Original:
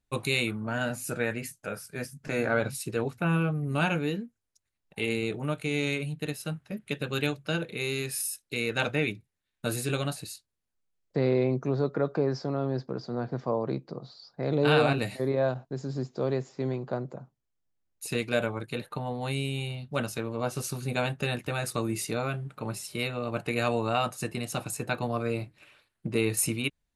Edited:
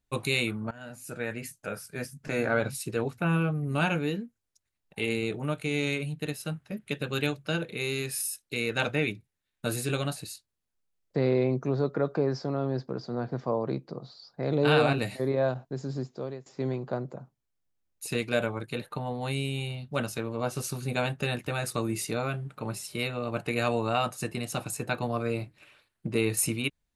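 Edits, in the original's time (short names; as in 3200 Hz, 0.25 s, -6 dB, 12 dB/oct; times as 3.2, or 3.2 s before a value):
0.71–1.63 fade in, from -21.5 dB
15.93–16.46 fade out, to -20 dB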